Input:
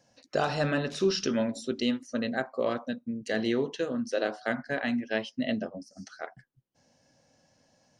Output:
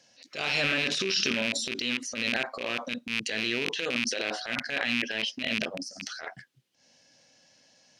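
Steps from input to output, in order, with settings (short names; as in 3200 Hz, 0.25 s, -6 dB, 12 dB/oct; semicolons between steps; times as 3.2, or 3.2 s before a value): rattling part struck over -39 dBFS, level -22 dBFS; limiter -22.5 dBFS, peak gain reduction 8.5 dB; weighting filter D; transient shaper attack -10 dB, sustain +8 dB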